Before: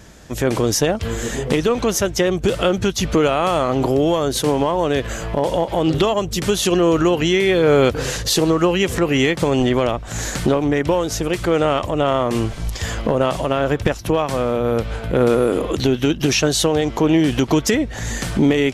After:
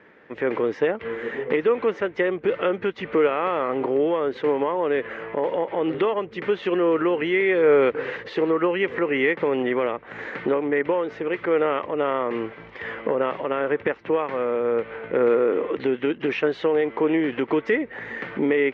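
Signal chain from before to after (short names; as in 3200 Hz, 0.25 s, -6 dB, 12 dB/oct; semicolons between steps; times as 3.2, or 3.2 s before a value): speaker cabinet 320–2400 Hz, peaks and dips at 450 Hz +5 dB, 680 Hz -7 dB, 2000 Hz +6 dB; gain -4 dB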